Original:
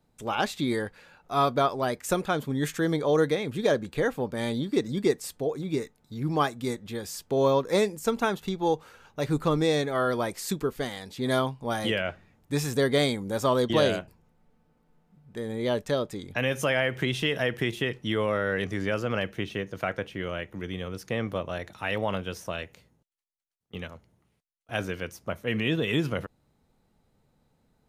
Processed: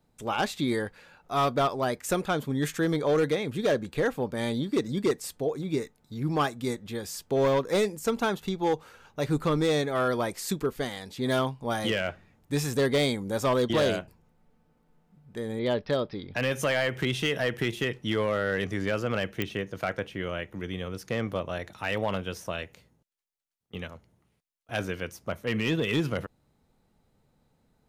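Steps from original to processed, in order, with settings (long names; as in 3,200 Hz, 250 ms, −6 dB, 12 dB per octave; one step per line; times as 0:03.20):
0:15.59–0:16.34: Butterworth low-pass 5,400 Hz 96 dB per octave
hard clipping −19 dBFS, distortion −16 dB
digital clicks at 0:19.42, −14 dBFS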